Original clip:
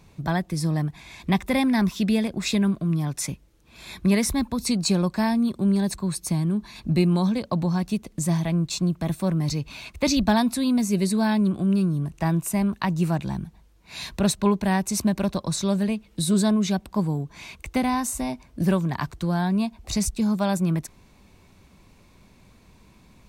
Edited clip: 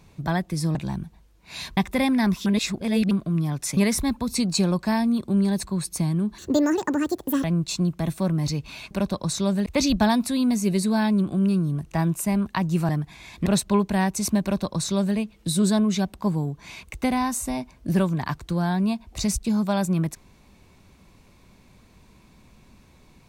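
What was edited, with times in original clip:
0:00.75–0:01.32: swap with 0:13.16–0:14.18
0:02.01–0:02.66: reverse
0:03.32–0:04.08: remove
0:06.69–0:08.46: play speed 167%
0:15.14–0:15.89: duplicate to 0:09.93

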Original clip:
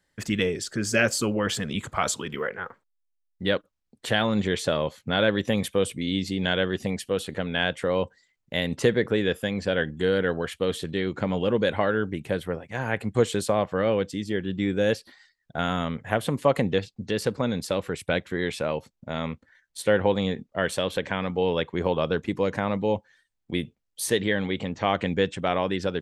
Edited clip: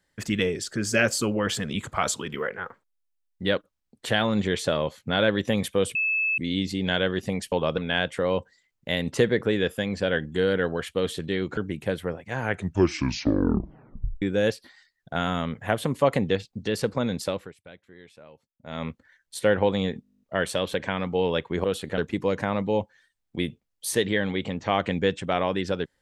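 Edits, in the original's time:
0:05.95: insert tone 2,610 Hz −21.5 dBFS 0.43 s
0:07.09–0:07.43: swap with 0:21.87–0:22.13
0:11.22–0:12.00: remove
0:12.84: tape stop 1.81 s
0:17.68–0:19.30: duck −21.5 dB, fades 0.29 s
0:20.45: stutter 0.02 s, 11 plays

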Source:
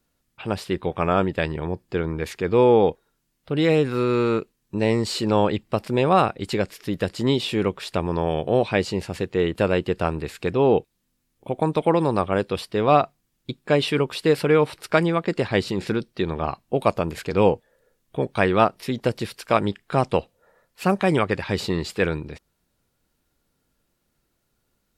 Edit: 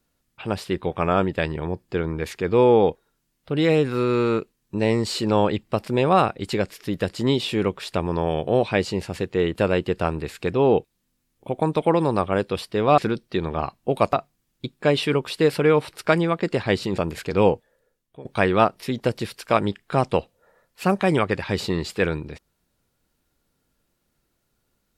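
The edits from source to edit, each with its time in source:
0:15.83–0:16.98: move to 0:12.98
0:17.52–0:18.25: fade out linear, to −20.5 dB

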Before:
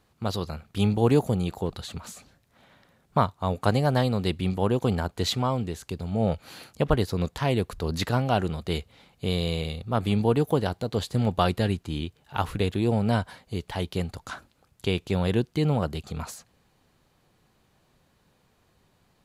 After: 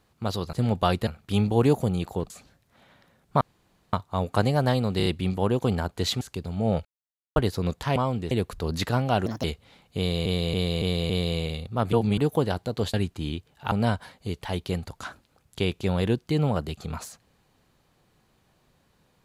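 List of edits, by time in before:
0:01.76–0:02.11: remove
0:03.22: splice in room tone 0.52 s
0:04.26: stutter 0.03 s, 4 plays
0:05.41–0:05.76: move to 0:07.51
0:06.40–0:06.91: silence
0:08.46–0:08.71: play speed 142%
0:09.25–0:09.53: repeat, 5 plays
0:10.08–0:10.33: reverse
0:11.09–0:11.63: move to 0:00.53
0:12.41–0:12.98: remove

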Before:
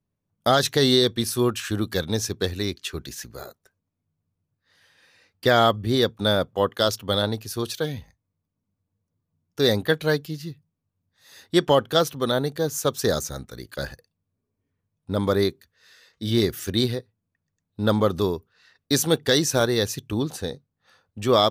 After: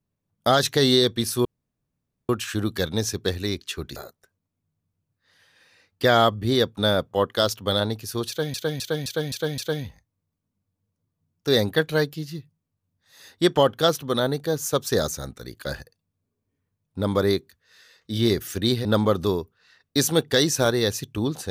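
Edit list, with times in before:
0:01.45: splice in room tone 0.84 s
0:03.12–0:03.38: remove
0:07.70–0:07.96: repeat, 6 plays
0:16.97–0:17.80: remove

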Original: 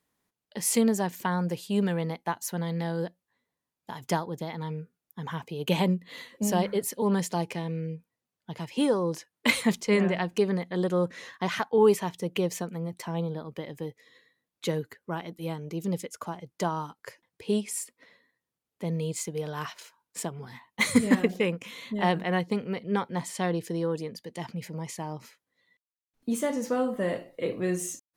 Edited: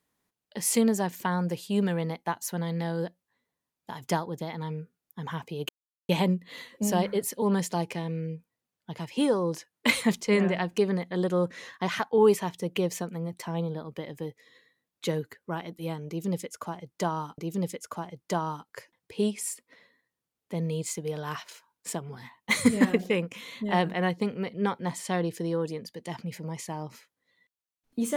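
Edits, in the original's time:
0:05.69: splice in silence 0.40 s
0:15.68–0:16.98: repeat, 2 plays

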